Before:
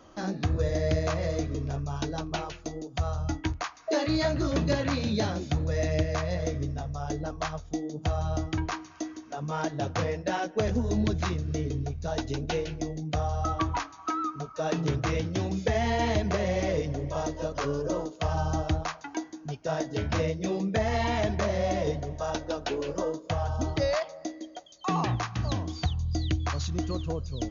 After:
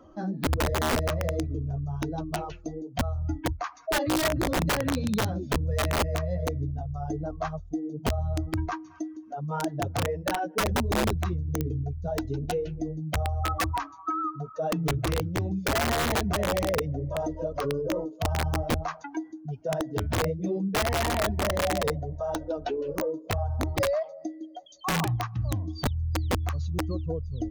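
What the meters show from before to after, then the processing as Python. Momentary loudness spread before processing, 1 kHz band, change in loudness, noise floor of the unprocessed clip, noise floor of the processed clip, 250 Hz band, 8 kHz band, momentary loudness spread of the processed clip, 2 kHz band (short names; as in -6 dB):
8 LU, +1.5 dB, +1.0 dB, -49 dBFS, -48 dBFS, 0.0 dB, n/a, 8 LU, +3.0 dB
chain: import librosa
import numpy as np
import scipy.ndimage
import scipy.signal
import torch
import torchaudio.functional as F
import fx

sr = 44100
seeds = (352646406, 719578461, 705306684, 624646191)

y = fx.spec_expand(x, sr, power=1.7)
y = (np.mod(10.0 ** (20.5 / 20.0) * y + 1.0, 2.0) - 1.0) / 10.0 ** (20.5 / 20.0)
y = F.gain(torch.from_numpy(y), 1.0).numpy()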